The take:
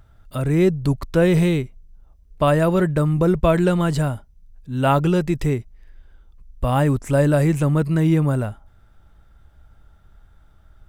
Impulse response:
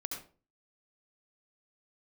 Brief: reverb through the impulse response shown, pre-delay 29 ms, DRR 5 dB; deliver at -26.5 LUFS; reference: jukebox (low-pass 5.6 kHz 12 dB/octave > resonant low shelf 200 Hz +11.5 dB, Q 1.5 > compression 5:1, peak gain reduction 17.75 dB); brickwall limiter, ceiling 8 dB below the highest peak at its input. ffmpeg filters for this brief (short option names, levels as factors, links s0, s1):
-filter_complex "[0:a]alimiter=limit=0.251:level=0:latency=1,asplit=2[s0][s1];[1:a]atrim=start_sample=2205,adelay=29[s2];[s1][s2]afir=irnorm=-1:irlink=0,volume=0.531[s3];[s0][s3]amix=inputs=2:normalize=0,lowpass=5600,lowshelf=f=200:t=q:w=1.5:g=11.5,acompressor=threshold=0.0794:ratio=5,volume=0.794"